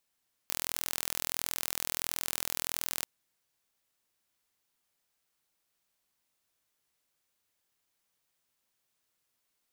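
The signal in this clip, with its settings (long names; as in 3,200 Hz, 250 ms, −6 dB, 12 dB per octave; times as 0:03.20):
impulse train 41.5 per second, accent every 0, −5.5 dBFS 2.55 s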